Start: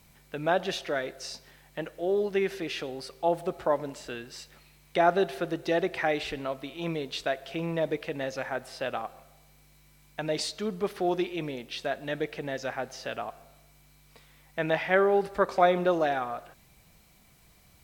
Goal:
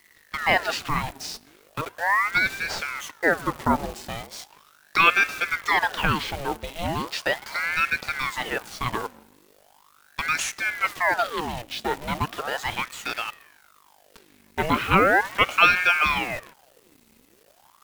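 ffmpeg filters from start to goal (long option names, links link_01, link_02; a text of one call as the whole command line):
ffmpeg -i in.wav -af "acrusher=bits=8:dc=4:mix=0:aa=0.000001,aeval=exprs='val(0)*sin(2*PI*1100*n/s+1100*0.8/0.38*sin(2*PI*0.38*n/s))':channel_layout=same,volume=7.5dB" out.wav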